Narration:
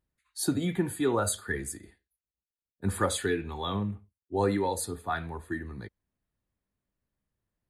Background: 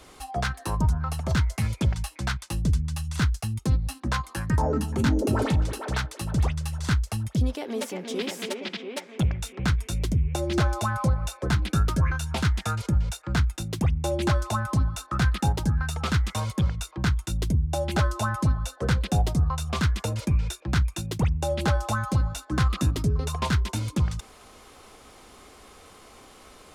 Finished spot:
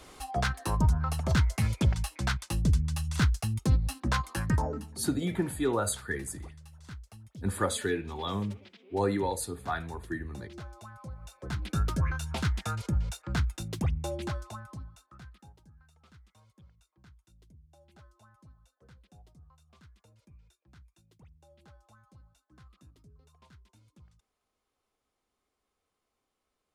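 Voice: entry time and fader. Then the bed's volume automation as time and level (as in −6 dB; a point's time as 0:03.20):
4.60 s, −1.5 dB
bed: 0:04.50 −1.5 dB
0:05.01 −21 dB
0:11.04 −21 dB
0:11.81 −5.5 dB
0:13.94 −5.5 dB
0:15.64 −33.5 dB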